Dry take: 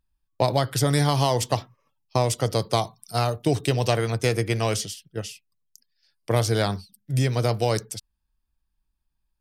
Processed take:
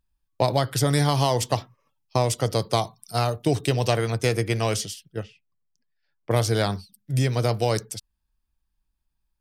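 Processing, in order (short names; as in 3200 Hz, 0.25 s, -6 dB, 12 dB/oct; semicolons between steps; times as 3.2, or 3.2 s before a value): 5.23–6.31 LPF 1700 Hz 12 dB/oct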